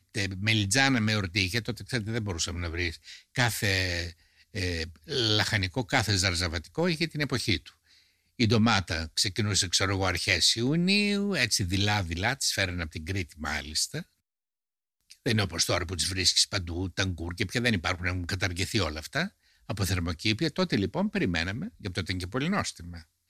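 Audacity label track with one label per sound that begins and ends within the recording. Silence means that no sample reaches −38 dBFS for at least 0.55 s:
8.390000	14.020000	sound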